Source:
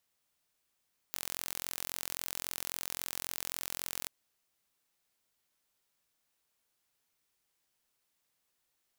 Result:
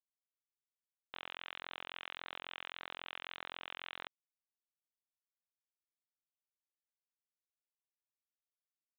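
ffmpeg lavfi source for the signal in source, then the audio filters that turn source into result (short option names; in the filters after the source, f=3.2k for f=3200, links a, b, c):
-f lavfi -i "aevalsrc='0.316*eq(mod(n,1009),0)':d=2.94:s=44100"
-af "highpass=280,aresample=8000,acrusher=bits=6:mix=0:aa=0.000001,aresample=44100"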